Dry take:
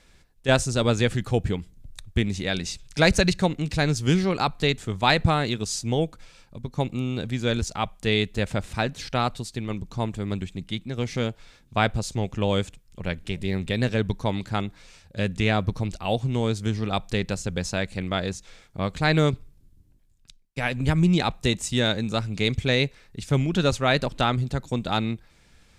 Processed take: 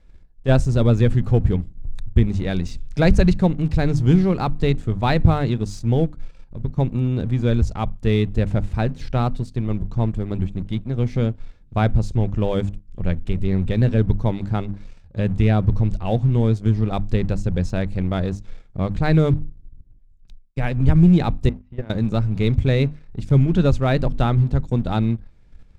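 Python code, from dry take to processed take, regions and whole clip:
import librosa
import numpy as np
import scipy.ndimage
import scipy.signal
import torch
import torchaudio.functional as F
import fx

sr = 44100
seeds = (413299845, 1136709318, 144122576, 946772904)

y = fx.chain(x, sr, fx.lowpass(hz=2400.0, slope=24),
    fx.level_steps(step_db=21), at=(21.49, 21.9))
y = fx.tilt_eq(y, sr, slope=-3.5)
y = fx.hum_notches(y, sr, base_hz=50, count=6)
y = fx.leveller(y, sr, passes=1)
y = y * librosa.db_to_amplitude(-5.0)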